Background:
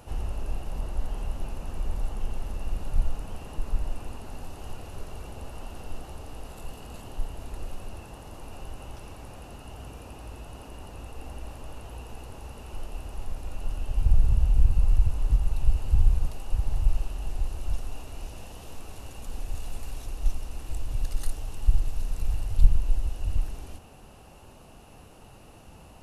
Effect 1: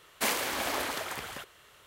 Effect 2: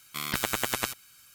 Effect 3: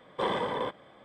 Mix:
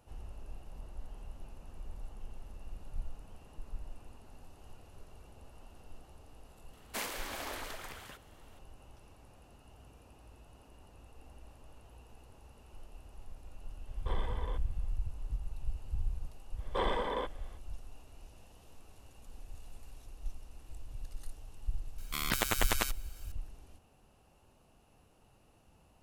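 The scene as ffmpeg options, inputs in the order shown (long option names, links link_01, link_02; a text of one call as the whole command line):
ffmpeg -i bed.wav -i cue0.wav -i cue1.wav -i cue2.wav -filter_complex "[3:a]asplit=2[link_01][link_02];[0:a]volume=-15dB[link_03];[link_01]bandreject=frequency=560:width=11[link_04];[link_02]highpass=200[link_05];[1:a]atrim=end=1.86,asetpts=PTS-STARTPTS,volume=-9.5dB,afade=type=in:duration=0.004:curve=hsin,afade=type=out:start_time=1.856:duration=0.004:curve=hsin,adelay=6730[link_06];[link_04]atrim=end=1.04,asetpts=PTS-STARTPTS,volume=-13dB,afade=type=in:duration=0.004:curve=hsin,afade=type=out:start_time=1.036:duration=0.004:curve=hsin,adelay=13870[link_07];[link_05]atrim=end=1.04,asetpts=PTS-STARTPTS,volume=-3.5dB,afade=type=in:duration=0.05,afade=type=out:start_time=0.99:duration=0.05,adelay=16560[link_08];[2:a]atrim=end=1.34,asetpts=PTS-STARTPTS,volume=-2.5dB,afade=type=in:duration=0.004:curve=hsin,afade=type=out:start_time=1.336:duration=0.004:curve=hsin,adelay=21980[link_09];[link_03][link_06][link_07][link_08][link_09]amix=inputs=5:normalize=0" out.wav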